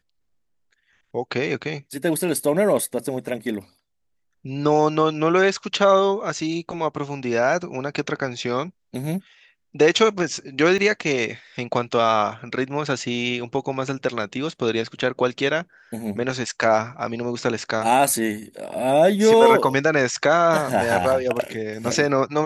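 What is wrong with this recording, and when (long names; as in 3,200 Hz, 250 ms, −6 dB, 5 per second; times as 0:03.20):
0:10.78–0:10.79: drop-out 5.6 ms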